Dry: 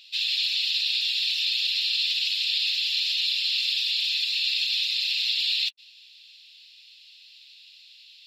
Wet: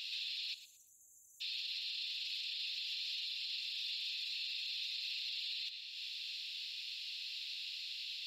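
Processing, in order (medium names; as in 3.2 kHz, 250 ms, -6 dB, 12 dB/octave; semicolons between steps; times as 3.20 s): algorithmic reverb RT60 0.79 s, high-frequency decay 0.9×, pre-delay 40 ms, DRR 14.5 dB; compression 8:1, threshold -42 dBFS, peak gain reduction 19.5 dB; spectral selection erased 0.54–1.41 s, 860–5900 Hz; thinning echo 114 ms, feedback 20%, level -17 dB; peak limiter -38.5 dBFS, peak gain reduction 7 dB; trim +6 dB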